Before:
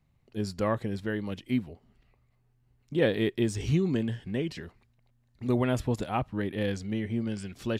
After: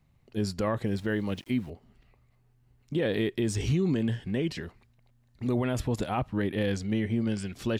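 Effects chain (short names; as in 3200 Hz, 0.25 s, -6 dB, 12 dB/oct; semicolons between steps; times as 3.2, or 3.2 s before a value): limiter -22.5 dBFS, peak gain reduction 9.5 dB; 0.84–1.7 sample gate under -55.5 dBFS; gain +3.5 dB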